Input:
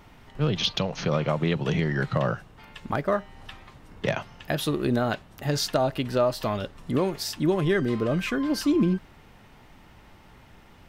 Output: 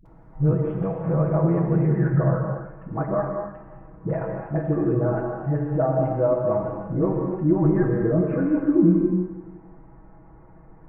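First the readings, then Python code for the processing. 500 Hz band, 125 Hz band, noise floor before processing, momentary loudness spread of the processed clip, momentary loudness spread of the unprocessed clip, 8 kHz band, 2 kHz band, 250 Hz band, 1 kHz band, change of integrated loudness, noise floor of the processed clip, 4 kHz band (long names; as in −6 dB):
+3.5 dB, +6.5 dB, −52 dBFS, 10 LU, 8 LU, below −40 dB, −7.5 dB, +5.0 dB, 0.0 dB, +3.5 dB, −48 dBFS, below −40 dB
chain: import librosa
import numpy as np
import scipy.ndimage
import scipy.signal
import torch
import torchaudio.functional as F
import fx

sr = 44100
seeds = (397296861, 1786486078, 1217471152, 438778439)

p1 = scipy.ndimage.gaussian_filter1d(x, 7.1, mode='constant')
p2 = p1 + 0.8 * np.pad(p1, (int(6.2 * sr / 1000.0), 0))[:len(p1)]
p3 = fx.dispersion(p2, sr, late='highs', ms=58.0, hz=380.0)
p4 = p3 + fx.echo_feedback(p3, sr, ms=171, feedback_pct=49, wet_db=-16.5, dry=0)
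y = fx.rev_gated(p4, sr, seeds[0], gate_ms=320, shape='flat', drr_db=0.5)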